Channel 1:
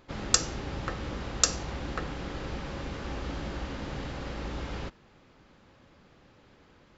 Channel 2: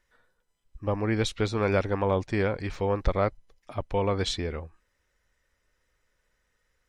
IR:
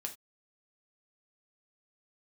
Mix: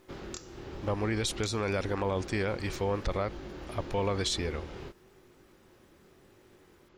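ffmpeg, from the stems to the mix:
-filter_complex "[0:a]equalizer=f=370:w=5.1:g=13,acompressor=threshold=0.0178:ratio=6,flanger=delay=19:depth=7.6:speed=0.93,volume=0.944[s0];[1:a]aemphasis=mode=production:type=75kf,volume=0.75[s1];[s0][s1]amix=inputs=2:normalize=0,alimiter=limit=0.0944:level=0:latency=1:release=42"

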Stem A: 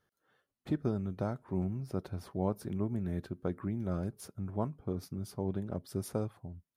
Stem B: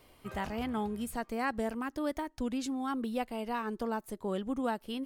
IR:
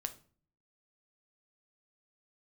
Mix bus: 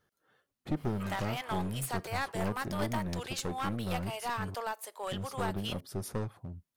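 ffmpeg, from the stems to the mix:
-filter_complex "[0:a]volume=1.33,asplit=3[s0][s1][s2];[s0]atrim=end=4.55,asetpts=PTS-STARTPTS,afade=t=out:st=4.546:d=0.004:c=hsin[s3];[s1]atrim=start=4.55:end=5.11,asetpts=PTS-STARTPTS,volume=0[s4];[s2]atrim=start=5.11,asetpts=PTS-STARTPTS,afade=t=in:d=0.004:c=hsin[s5];[s3][s4][s5]concat=n=3:v=0:a=1[s6];[1:a]highpass=f=590:w=0.5412,highpass=f=590:w=1.3066,alimiter=level_in=1.68:limit=0.0631:level=0:latency=1:release=397,volume=0.596,adynamicequalizer=threshold=0.00316:dfrequency=1600:dqfactor=0.7:tfrequency=1600:tqfactor=0.7:attack=5:release=100:ratio=0.375:range=2.5:mode=boostabove:tftype=highshelf,adelay=750,volume=1.26,asplit=2[s7][s8];[s8]volume=0.376[s9];[2:a]atrim=start_sample=2205[s10];[s9][s10]afir=irnorm=-1:irlink=0[s11];[s6][s7][s11]amix=inputs=3:normalize=0,aeval=exprs='clip(val(0),-1,0.0211)':c=same"

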